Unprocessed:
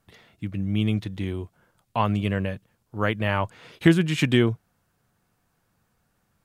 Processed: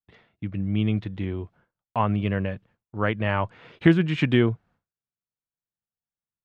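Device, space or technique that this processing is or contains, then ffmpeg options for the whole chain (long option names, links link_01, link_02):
hearing-loss simulation: -filter_complex "[0:a]asettb=1/sr,asplit=3[link_01][link_02][link_03];[link_01]atrim=end=1.254[link_04];[link_02]atrim=start=1.25:end=2.18,asetpts=PTS-STARTPTS,afade=type=in:duration=0.004:curve=qsin,afade=type=out:start_time=0.926:duration=0.004:curve=qsin,acrossover=split=3200[link_05][link_06];[link_06]acompressor=threshold=-55dB:ratio=4:attack=1:release=60[link_07];[link_05][link_07]amix=inputs=2:normalize=0[link_08];[link_03]atrim=start=2.176[link_09];[link_04][link_08]acrossfade=duration=0.004:curve1=hsin:curve2=qsin[link_10];[link_10][link_09]acrossfade=duration=0.004:curve1=qsin:curve2=hsin,lowpass=2900,agate=range=-33dB:threshold=-50dB:ratio=3:detection=peak"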